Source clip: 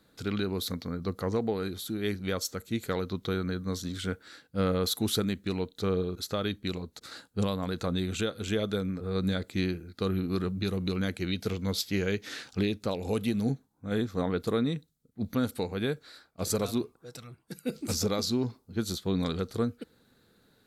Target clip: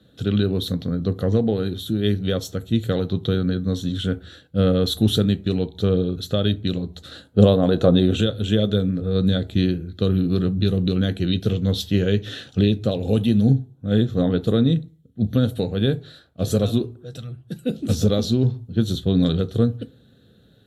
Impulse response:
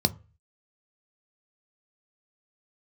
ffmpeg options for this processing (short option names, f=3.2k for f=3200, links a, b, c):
-filter_complex "[0:a]asettb=1/sr,asplit=3[a][b][c];[a]atrim=end=7.284[d];[b]atrim=start=7.28:end=8.21,asetpts=PTS-STARTPTS,afade=t=in:d=0.004:c=qsin,afade=t=out:st=0.926:d=0.004:c=qsin,equalizer=f=580:t=o:w=2.5:g=9.5[e];[c]atrim=start=8.206[f];[d][e]acrossfade=d=0.004:c1=hsin:c2=qsin[g];[g][f]acrossfade=d=0.004:c1=qsin:c2=hsin[h];[1:a]atrim=start_sample=2205,afade=t=out:st=0.26:d=0.01,atrim=end_sample=11907,asetrate=31752,aresample=44100[i];[h][i]afir=irnorm=-1:irlink=0,volume=-8.5dB"